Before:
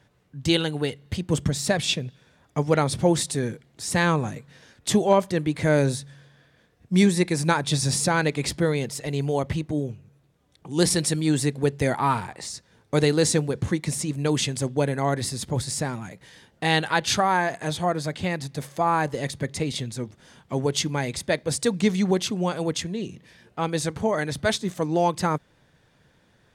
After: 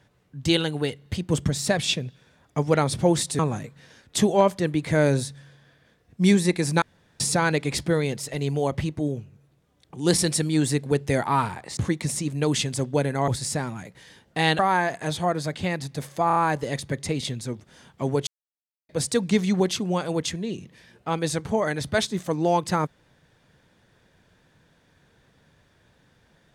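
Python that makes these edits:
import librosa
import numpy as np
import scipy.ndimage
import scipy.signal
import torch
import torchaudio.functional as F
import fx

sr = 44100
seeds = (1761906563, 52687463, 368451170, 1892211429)

y = fx.edit(x, sr, fx.cut(start_s=3.39, length_s=0.72),
    fx.room_tone_fill(start_s=7.54, length_s=0.38),
    fx.cut(start_s=12.49, length_s=1.11),
    fx.cut(start_s=15.11, length_s=0.43),
    fx.cut(start_s=16.85, length_s=0.34),
    fx.stutter(start_s=18.87, slice_s=0.03, count=4),
    fx.silence(start_s=20.78, length_s=0.62), tone=tone)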